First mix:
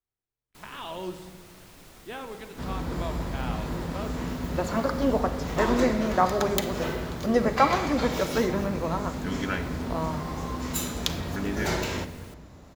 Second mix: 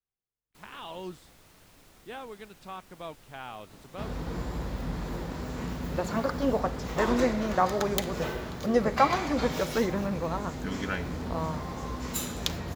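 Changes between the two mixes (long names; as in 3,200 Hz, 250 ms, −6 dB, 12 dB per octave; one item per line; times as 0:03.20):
first sound −6.5 dB
second sound: entry +1.40 s
reverb: off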